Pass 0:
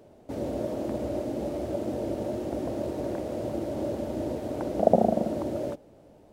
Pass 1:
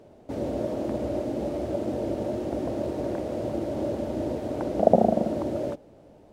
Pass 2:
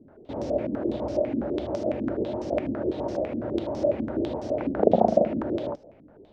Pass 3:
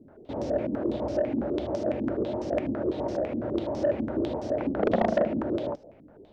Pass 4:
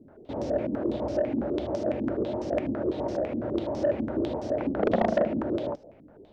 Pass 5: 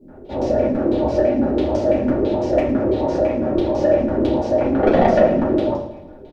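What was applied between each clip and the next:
treble shelf 9.3 kHz -8 dB; trim +2 dB
step-sequenced low-pass 12 Hz 260–5600 Hz; trim -2.5 dB
saturation -15.5 dBFS, distortion -11 dB
no audible change
on a send: feedback delay 109 ms, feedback 54%, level -13.5 dB; on the sum: simulated room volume 140 m³, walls furnished, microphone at 4.5 m

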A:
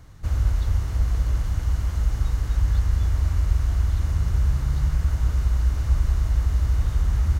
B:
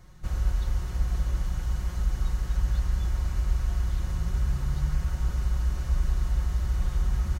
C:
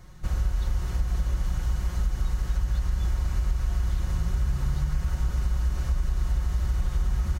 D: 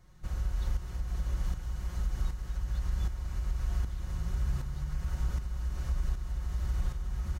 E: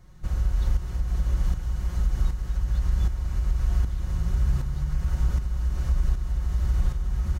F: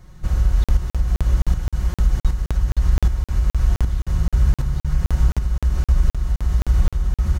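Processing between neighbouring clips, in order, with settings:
comb 5.5 ms; trim -4.5 dB
compression, threshold -24 dBFS, peak gain reduction 6 dB; trim +3.5 dB
tremolo saw up 1.3 Hz, depth 60%; trim -4 dB
bass shelf 490 Hz +4 dB; trim +4 dB
crackling interface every 0.26 s, samples 2048, zero, from 0.64 s; trim +7 dB

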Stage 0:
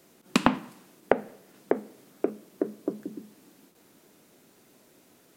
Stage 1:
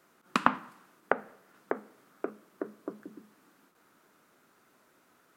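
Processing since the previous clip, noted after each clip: peaking EQ 1.3 kHz +14.5 dB 1.2 oct; trim -10 dB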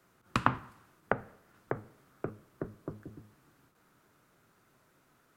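octave divider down 1 oct, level +2 dB; trim -3 dB

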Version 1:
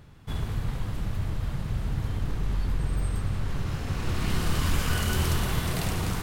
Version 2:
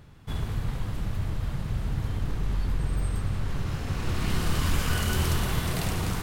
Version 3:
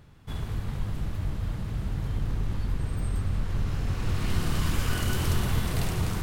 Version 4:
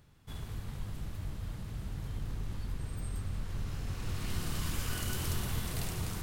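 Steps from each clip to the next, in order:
no audible change
feedback echo behind a low-pass 238 ms, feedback 76%, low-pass 420 Hz, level -5 dB; trim -2.5 dB
treble shelf 4 kHz +8 dB; trim -9 dB

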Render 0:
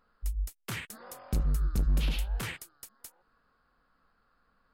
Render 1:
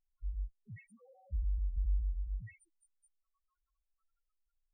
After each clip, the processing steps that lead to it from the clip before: loudest bins only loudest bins 1; trim -1.5 dB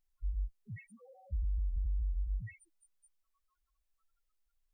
peak limiter -33 dBFS, peak gain reduction 7.5 dB; trim +4 dB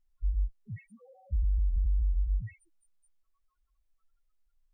tilt EQ -1.5 dB/octave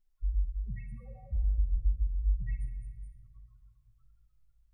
simulated room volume 2500 m³, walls mixed, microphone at 1.1 m; trim -2 dB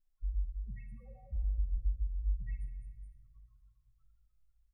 comb 3.8 ms, depth 31%; trim -6 dB

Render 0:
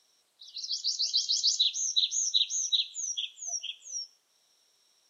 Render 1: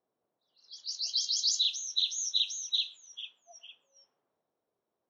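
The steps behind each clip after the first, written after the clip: transient shaper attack -2 dB, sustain +3 dB; level-controlled noise filter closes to 640 Hz, open at -23 dBFS; trim -1.5 dB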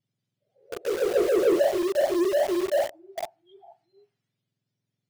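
spectrum inverted on a logarithmic axis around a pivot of 1.5 kHz; in parallel at -3.5 dB: companded quantiser 2-bit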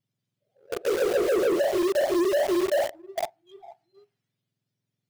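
compression, threshold -24 dBFS, peak gain reduction 7.5 dB; waveshaping leveller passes 1; trim +1.5 dB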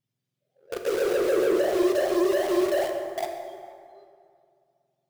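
plate-style reverb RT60 2.3 s, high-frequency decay 0.55×, DRR 3 dB; trim -2 dB

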